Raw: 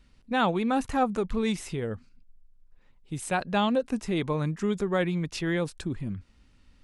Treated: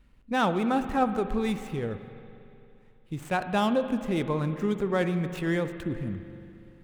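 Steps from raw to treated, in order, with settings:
running median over 9 samples
spring reverb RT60 2.8 s, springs 42/57 ms, chirp 50 ms, DRR 9.5 dB

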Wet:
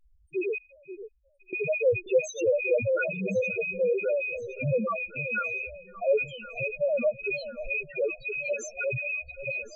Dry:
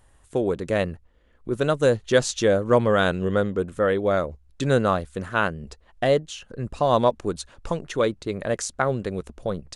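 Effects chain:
loose part that buzzes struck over −39 dBFS, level −9 dBFS
high-shelf EQ 2,100 Hz +7 dB
in parallel at −7.5 dB: soft clipping −11 dBFS, distortion −14 dB
on the sum: spectral peaks only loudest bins 1
0:00.58–0:01.53: guitar amp tone stack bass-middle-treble 10-0-1
delay that swaps between a low-pass and a high-pass 533 ms, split 820 Hz, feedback 68%, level −12 dB

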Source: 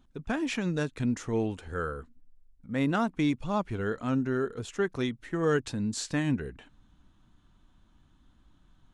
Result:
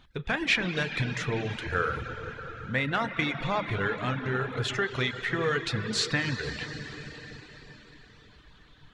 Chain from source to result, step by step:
downward compressor 4 to 1, threshold −33 dBFS, peak gain reduction 10.5 dB
on a send at −3 dB: convolution reverb RT60 4.9 s, pre-delay 6 ms
on the sum: reverb reduction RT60 0.62 s
octave-band graphic EQ 125/250/500/1,000/2,000/4,000/8,000 Hz +7/−6/+4/+3/+12/+10/−3 dB
level +3 dB

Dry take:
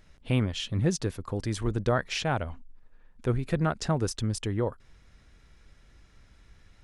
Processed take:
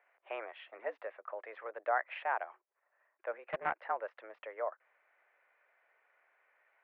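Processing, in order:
single-sideband voice off tune +110 Hz 470–2,200 Hz
0:03.44–0:03.89: highs frequency-modulated by the lows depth 0.24 ms
level −3.5 dB

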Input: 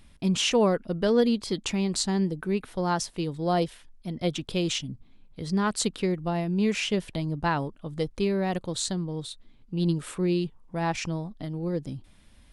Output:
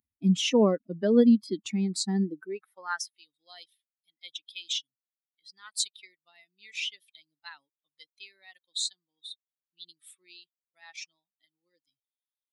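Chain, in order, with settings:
spectral dynamics exaggerated over time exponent 2
high-pass filter sweep 220 Hz → 3,400 Hz, 0:02.18–0:03.20

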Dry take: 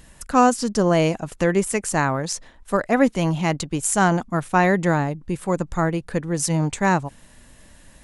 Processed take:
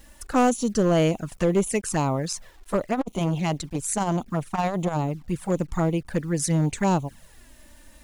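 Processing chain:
bit reduction 9 bits
flanger swept by the level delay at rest 3.8 ms, full sweep at −17.5 dBFS
gain into a clipping stage and back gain 14.5 dB
0:02.79–0:05.25: saturating transformer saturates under 280 Hz

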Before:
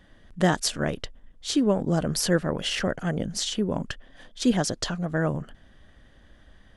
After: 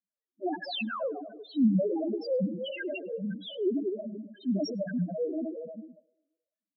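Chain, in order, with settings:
feedback delay that plays each chunk backwards 118 ms, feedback 70%, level −6.5 dB
noise gate −37 dBFS, range −36 dB
Butterworth high-pass 190 Hz 96 dB per octave
high-shelf EQ 4,300 Hz −7 dB
sound drawn into the spectrogram fall, 0:00.67–0:01.01, 920–5,300 Hz −24 dBFS
in parallel at −2.5 dB: brickwall limiter −17 dBFS, peak gain reduction 7.5 dB
on the sum: transient designer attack −7 dB, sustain +12 dB
flanger 1.2 Hz, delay 0.6 ms, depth 2.6 ms, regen +6%
spectral peaks only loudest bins 2
dynamic equaliser 890 Hz, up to −3 dB, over −45 dBFS, Q 2.3
on a send: feedback echo with a band-pass in the loop 104 ms, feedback 48%, band-pass 680 Hz, level −20 dB

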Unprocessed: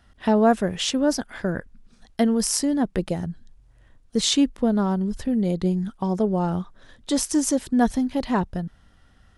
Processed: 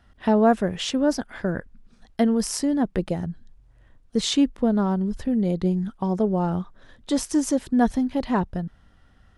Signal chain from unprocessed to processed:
high-shelf EQ 4,000 Hz −7 dB

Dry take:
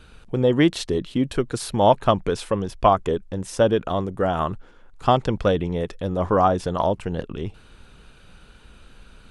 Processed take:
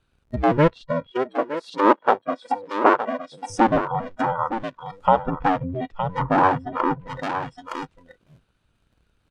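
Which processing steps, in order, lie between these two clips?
sub-harmonics by changed cycles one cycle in 2, inverted
noise reduction from a noise print of the clip's start 24 dB
dynamic equaliser 360 Hz, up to −4 dB, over −29 dBFS, Q 1
single-tap delay 915 ms −10.5 dB
treble cut that deepens with the level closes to 1,300 Hz, closed at −23.5 dBFS
0:01.11–0:03.50: high-pass filter 260 Hz 24 dB per octave
level +3.5 dB

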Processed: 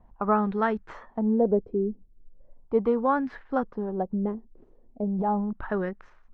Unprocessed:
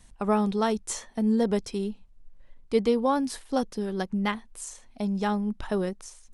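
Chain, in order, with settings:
running median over 5 samples
0:05.03–0:05.53: transient designer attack −8 dB, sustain +10 dB
auto-filter low-pass sine 0.38 Hz 360–1,700 Hz
level −1.5 dB

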